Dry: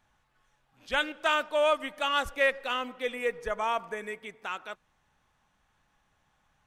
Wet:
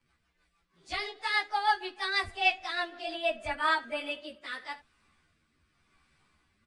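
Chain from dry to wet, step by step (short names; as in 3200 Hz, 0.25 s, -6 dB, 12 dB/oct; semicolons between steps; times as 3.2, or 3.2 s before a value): pitch shift by moving bins +5.5 st; vocal rider within 4 dB 2 s; downsampling 22050 Hz; on a send: early reflections 13 ms -5.5 dB, 71 ms -16.5 dB; on the sum: rotary speaker horn 6.3 Hz, later 0.9 Hz, at 3.25; gain +2.5 dB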